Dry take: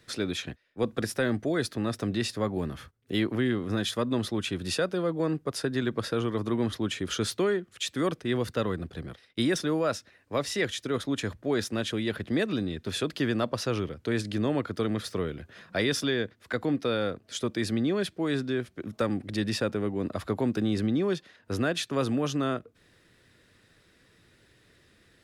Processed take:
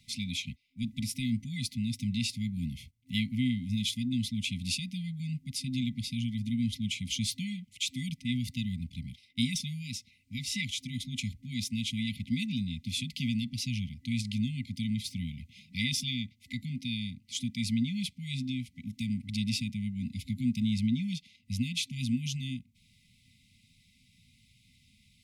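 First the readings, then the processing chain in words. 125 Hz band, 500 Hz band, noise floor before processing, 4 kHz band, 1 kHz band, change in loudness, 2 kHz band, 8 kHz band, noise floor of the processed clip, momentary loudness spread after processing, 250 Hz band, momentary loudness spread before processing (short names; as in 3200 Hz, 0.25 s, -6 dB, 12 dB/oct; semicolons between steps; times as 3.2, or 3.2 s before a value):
0.0 dB, under -40 dB, -63 dBFS, 0.0 dB, under -40 dB, -4.0 dB, -6.5 dB, 0.0 dB, -66 dBFS, 8 LU, -3.0 dB, 6 LU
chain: FFT band-reject 260–2000 Hz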